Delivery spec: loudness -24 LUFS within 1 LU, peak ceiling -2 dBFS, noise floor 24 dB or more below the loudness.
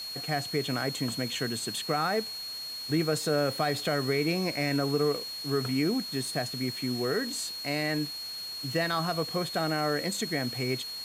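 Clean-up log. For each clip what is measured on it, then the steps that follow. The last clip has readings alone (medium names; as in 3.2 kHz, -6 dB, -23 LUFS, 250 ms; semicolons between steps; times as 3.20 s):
steady tone 4.3 kHz; tone level -36 dBFS; noise floor -39 dBFS; noise floor target -54 dBFS; loudness -29.5 LUFS; peak level -14.5 dBFS; loudness target -24.0 LUFS
-> band-stop 4.3 kHz, Q 30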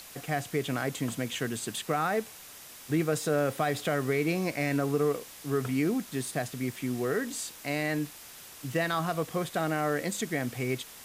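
steady tone not found; noise floor -48 dBFS; noise floor target -55 dBFS
-> noise reduction 7 dB, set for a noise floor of -48 dBFS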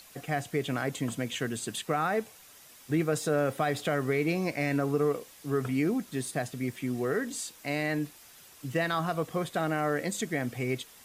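noise floor -54 dBFS; noise floor target -55 dBFS
-> noise reduction 6 dB, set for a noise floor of -54 dBFS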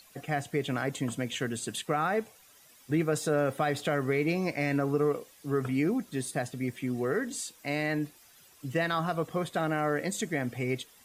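noise floor -58 dBFS; loudness -31.0 LUFS; peak level -15.5 dBFS; loudness target -24.0 LUFS
-> trim +7 dB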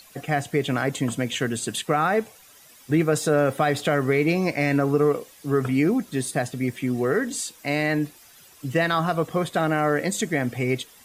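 loudness -24.0 LUFS; peak level -8.5 dBFS; noise floor -51 dBFS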